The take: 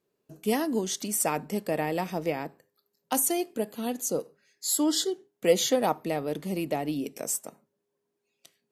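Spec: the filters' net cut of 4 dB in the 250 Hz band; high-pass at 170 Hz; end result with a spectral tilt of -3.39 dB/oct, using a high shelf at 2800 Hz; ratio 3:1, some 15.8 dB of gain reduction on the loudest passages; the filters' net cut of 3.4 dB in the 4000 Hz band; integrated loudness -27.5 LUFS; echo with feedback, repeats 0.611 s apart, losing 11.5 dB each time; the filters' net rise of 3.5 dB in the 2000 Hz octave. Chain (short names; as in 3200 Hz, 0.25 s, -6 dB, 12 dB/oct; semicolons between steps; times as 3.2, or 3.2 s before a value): HPF 170 Hz; bell 250 Hz -4.5 dB; bell 2000 Hz +6.5 dB; high shelf 2800 Hz -4 dB; bell 4000 Hz -3 dB; compressor 3:1, threshold -39 dBFS; feedback echo 0.611 s, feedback 27%, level -11.5 dB; gain +13 dB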